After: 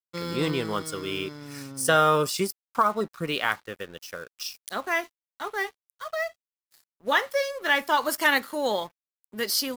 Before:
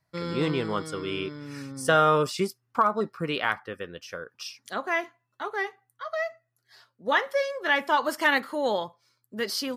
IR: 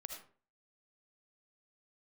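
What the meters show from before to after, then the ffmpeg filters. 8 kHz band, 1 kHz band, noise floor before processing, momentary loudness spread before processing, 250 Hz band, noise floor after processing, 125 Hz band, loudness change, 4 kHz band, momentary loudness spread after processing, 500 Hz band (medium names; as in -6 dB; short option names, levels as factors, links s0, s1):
+7.5 dB, 0.0 dB, -78 dBFS, 16 LU, -0.5 dB, under -85 dBFS, -0.5 dB, +0.5 dB, +3.0 dB, 16 LU, -0.5 dB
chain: -af "aeval=exprs='sgn(val(0))*max(abs(val(0))-0.00299,0)':c=same,aemphasis=mode=production:type=50kf"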